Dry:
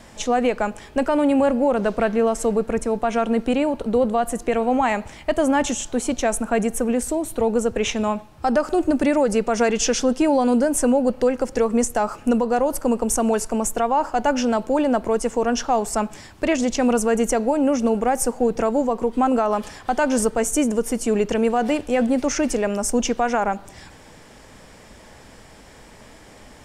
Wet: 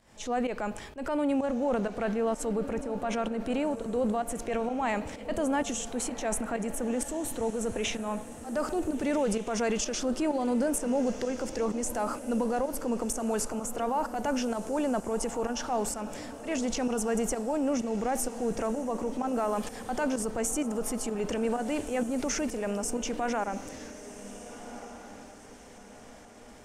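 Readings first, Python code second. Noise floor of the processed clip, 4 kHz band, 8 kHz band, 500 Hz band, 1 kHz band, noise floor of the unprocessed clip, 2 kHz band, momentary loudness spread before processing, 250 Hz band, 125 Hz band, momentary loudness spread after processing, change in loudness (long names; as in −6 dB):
−49 dBFS, −8.0 dB, −7.5 dB, −10.0 dB, −10.5 dB, −46 dBFS, −9.5 dB, 5 LU, −9.5 dB, −7.0 dB, 11 LU, −9.5 dB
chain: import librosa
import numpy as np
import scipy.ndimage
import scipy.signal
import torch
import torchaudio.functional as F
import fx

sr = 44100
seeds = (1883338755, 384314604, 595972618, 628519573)

y = fx.volume_shaper(x, sr, bpm=128, per_beat=1, depth_db=-18, release_ms=173.0, shape='fast start')
y = fx.transient(y, sr, attack_db=-4, sustain_db=7)
y = fx.echo_diffused(y, sr, ms=1474, feedback_pct=42, wet_db=-13.0)
y = F.gain(torch.from_numpy(y), -9.0).numpy()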